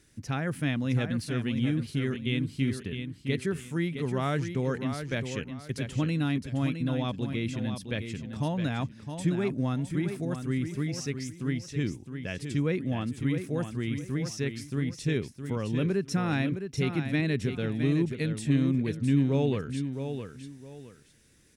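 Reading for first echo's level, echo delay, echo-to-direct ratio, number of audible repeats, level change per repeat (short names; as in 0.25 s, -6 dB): -8.0 dB, 0.663 s, -7.5 dB, 2, -11.0 dB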